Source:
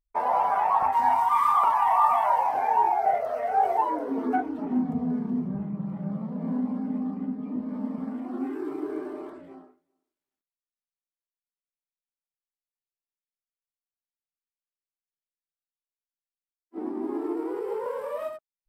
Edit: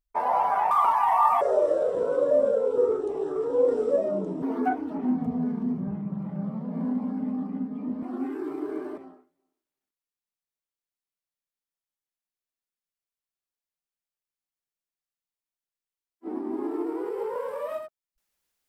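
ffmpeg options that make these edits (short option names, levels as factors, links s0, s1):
-filter_complex "[0:a]asplit=6[s0][s1][s2][s3][s4][s5];[s0]atrim=end=0.712[s6];[s1]atrim=start=1.498:end=2.204[s7];[s2]atrim=start=2.2:end=4.1,asetpts=PTS-STARTPTS,asetrate=27783,aresample=44100[s8];[s3]atrim=start=4.096:end=7.702[s9];[s4]atrim=start=8.228:end=9.182[s10];[s5]atrim=start=9.478[s11];[s6][s7]acrossfade=d=0.004:c1=hsin:c2=hsin[s12];[s12][s8]acrossfade=d=0.004:c1=hsin:c2=hsin[s13];[s13][s9]acrossfade=d=0.004:c1=hsin:c2=hsin[s14];[s14][s10]acrossfade=d=0.004:c1=hsin:c2=hsin[s15];[s15][s11]acrossfade=d=0.004:c1=hsin:c2=hsin"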